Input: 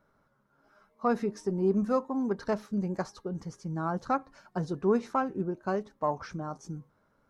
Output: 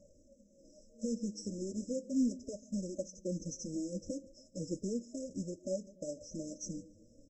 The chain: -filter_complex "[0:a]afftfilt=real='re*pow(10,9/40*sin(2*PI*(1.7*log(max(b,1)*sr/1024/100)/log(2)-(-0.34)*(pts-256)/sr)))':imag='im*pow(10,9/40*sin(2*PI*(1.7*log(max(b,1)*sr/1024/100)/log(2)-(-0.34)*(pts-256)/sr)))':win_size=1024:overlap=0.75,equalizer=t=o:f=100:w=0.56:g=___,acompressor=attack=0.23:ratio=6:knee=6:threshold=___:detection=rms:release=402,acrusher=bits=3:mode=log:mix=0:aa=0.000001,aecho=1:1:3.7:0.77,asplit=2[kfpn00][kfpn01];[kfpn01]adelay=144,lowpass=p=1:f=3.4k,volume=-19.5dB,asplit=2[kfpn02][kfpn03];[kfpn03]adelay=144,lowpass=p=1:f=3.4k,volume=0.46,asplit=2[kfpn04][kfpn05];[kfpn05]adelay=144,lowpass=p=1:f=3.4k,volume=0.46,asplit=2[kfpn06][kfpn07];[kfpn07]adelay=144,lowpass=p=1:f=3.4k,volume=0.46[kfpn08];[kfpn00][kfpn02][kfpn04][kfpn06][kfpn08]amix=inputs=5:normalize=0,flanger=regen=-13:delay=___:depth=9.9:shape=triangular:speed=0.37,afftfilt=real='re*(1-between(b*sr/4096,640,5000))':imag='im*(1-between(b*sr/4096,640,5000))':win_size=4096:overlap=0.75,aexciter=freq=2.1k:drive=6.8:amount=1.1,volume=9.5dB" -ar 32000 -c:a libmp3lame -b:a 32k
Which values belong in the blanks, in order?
9, -39dB, 1